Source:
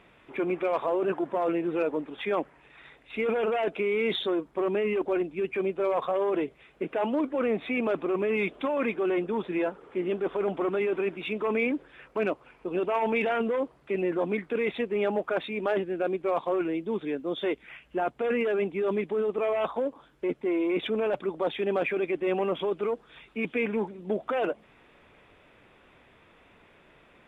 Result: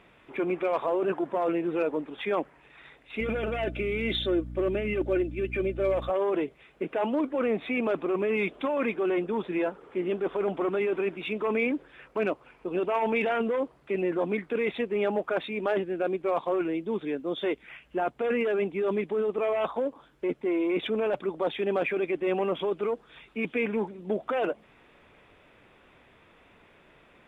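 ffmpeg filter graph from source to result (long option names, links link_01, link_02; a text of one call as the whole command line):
ffmpeg -i in.wav -filter_complex "[0:a]asettb=1/sr,asplit=3[link_01][link_02][link_03];[link_01]atrim=end=3.204[link_04];[link_02]atrim=start=3.2:end=6.1,asetpts=PTS-STARTPTS,afade=type=in:duration=0.004:curve=qsin,afade=type=out:start_time=2.896:duration=0.004:curve=qsin,equalizer=frequency=970:width=3.1:gain=-13,aecho=1:1:3.4:0.53,atrim=end_sample=127890,aeval=exprs='val(0)+0.0141*(sin(2*PI*60*n/s)+sin(2*PI*2*60*n/s)/2+sin(2*PI*3*60*n/s)/3+sin(2*PI*4*60*n/s)/4+sin(2*PI*5*60*n/s)/5)':channel_layout=same[link_05];[link_03]atrim=start=6.096[link_06];[link_04][link_05]acrossfade=duration=0.004:curve1=hsin:curve2=qsin[link_07];[link_07][link_06]acrossfade=duration=0.004:curve1=qsin:curve2=hsin" out.wav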